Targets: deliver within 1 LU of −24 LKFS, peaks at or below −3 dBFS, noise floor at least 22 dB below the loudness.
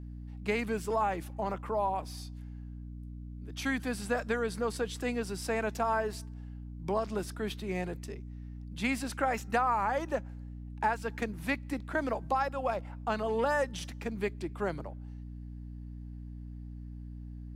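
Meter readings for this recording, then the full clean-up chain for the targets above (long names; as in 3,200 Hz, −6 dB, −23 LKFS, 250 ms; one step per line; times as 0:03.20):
mains hum 60 Hz; hum harmonics up to 300 Hz; level of the hum −40 dBFS; integrated loudness −33.5 LKFS; sample peak −16.5 dBFS; target loudness −24.0 LKFS
→ hum removal 60 Hz, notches 5
level +9.5 dB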